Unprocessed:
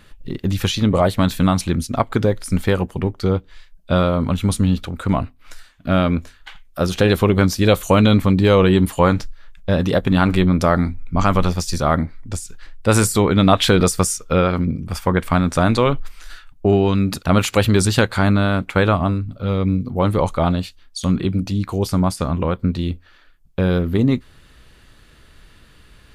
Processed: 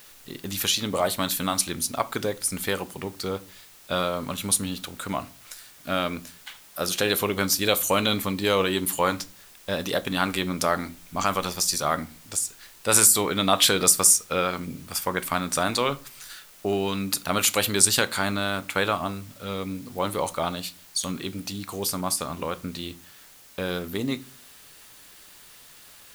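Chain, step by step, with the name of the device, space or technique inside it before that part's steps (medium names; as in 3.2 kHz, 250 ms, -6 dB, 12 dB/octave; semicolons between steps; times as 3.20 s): turntable without a phono preamp (RIAA curve recording; white noise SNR 24 dB); simulated room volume 250 m³, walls furnished, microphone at 0.34 m; trim -6 dB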